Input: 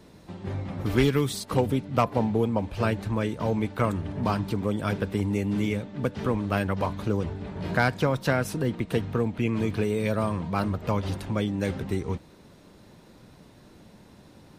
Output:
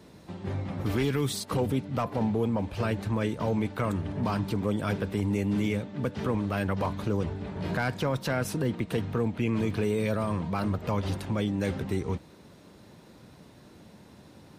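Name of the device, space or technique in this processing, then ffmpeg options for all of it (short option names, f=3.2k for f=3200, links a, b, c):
soft clipper into limiter: -af "highpass=56,asoftclip=type=tanh:threshold=-10.5dB,alimiter=limit=-19dB:level=0:latency=1:release=10"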